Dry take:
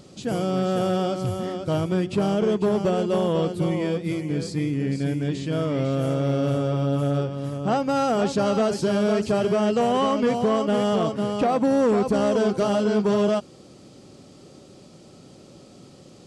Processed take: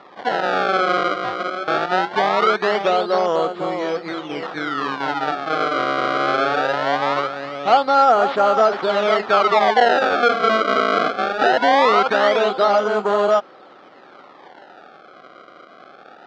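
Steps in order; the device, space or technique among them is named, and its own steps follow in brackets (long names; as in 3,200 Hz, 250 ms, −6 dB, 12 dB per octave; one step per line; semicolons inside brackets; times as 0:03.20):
circuit-bent sampling toy (sample-and-hold swept by an LFO 28×, swing 160% 0.21 Hz; loudspeaker in its box 510–4,100 Hz, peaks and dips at 760 Hz +7 dB, 1,300 Hz +9 dB, 2,600 Hz −5 dB)
level +6.5 dB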